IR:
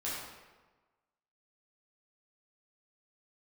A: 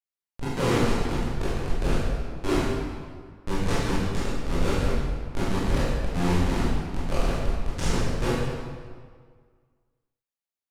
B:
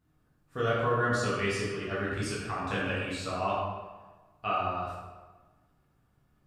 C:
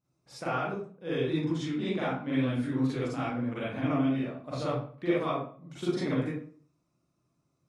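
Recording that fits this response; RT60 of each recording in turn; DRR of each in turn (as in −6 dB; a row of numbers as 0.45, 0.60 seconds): B; 1.8, 1.3, 0.45 seconds; −10.0, −8.5, −9.5 decibels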